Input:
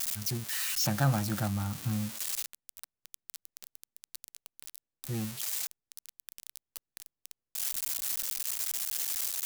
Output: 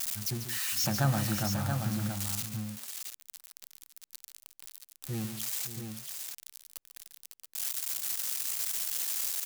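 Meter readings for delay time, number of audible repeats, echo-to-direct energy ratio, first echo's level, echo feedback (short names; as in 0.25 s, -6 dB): 0.142 s, 3, -4.0 dB, -10.5 dB, no steady repeat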